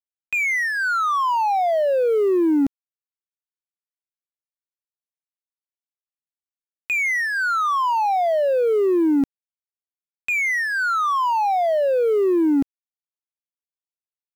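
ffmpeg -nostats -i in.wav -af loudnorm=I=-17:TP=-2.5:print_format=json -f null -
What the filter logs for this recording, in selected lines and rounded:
"input_i" : "-20.0",
"input_tp" : "-13.4",
"input_lra" : "4.6",
"input_thresh" : "-30.0",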